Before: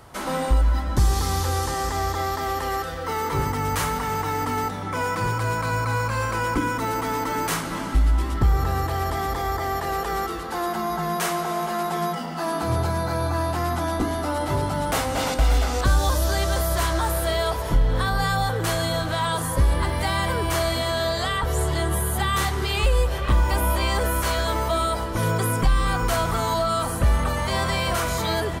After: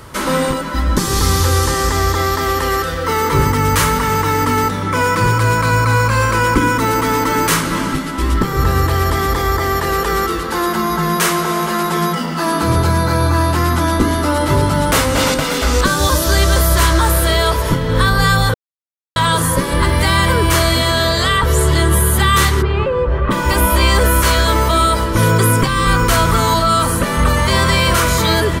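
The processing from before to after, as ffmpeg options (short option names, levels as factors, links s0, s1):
-filter_complex "[0:a]asplit=3[s0][s1][s2];[s0]afade=t=out:st=22.61:d=0.02[s3];[s1]lowpass=1300,afade=t=in:st=22.61:d=0.02,afade=t=out:st=23.3:d=0.02[s4];[s2]afade=t=in:st=23.3:d=0.02[s5];[s3][s4][s5]amix=inputs=3:normalize=0,asplit=3[s6][s7][s8];[s6]atrim=end=18.54,asetpts=PTS-STARTPTS,afade=t=out:st=18.536:d=0.004:c=hsin[s9];[s7]atrim=start=18.54:end=19.16,asetpts=PTS-STARTPTS,volume=0[s10];[s8]atrim=start=19.16,asetpts=PTS-STARTPTS,afade=t=in:d=0.004:c=hsin[s11];[s9][s10][s11]concat=n=3:v=0:a=1,afftfilt=real='re*lt(hypot(re,im),0.891)':imag='im*lt(hypot(re,im),0.891)':win_size=1024:overlap=0.75,equalizer=f=740:t=o:w=0.27:g=-14.5,acontrast=64,volume=1.78"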